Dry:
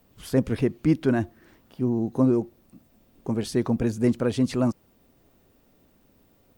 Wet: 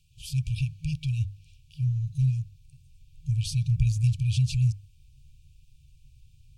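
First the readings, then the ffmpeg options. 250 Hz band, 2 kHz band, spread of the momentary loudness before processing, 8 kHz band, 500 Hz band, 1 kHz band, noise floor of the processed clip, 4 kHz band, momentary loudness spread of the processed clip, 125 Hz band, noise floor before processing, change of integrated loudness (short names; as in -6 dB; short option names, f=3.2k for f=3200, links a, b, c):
under -10 dB, -8.5 dB, 8 LU, +1.0 dB, under -40 dB, under -40 dB, -58 dBFS, +2.0 dB, 9 LU, +6.0 dB, -62 dBFS, -3.0 dB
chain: -filter_complex "[0:a]lowpass=10k,bandreject=f=50:t=h:w=6,bandreject=f=100:t=h:w=6,asplit=2[a][b];[b]asoftclip=type=hard:threshold=-24.5dB,volume=-11.5dB[c];[a][c]amix=inputs=2:normalize=0,afftfilt=real='re*(1-between(b*sr/4096,160,2300))':imag='im*(1-between(b*sr/4096,160,2300))':win_size=4096:overlap=0.75,asubboost=boost=4.5:cutoff=140"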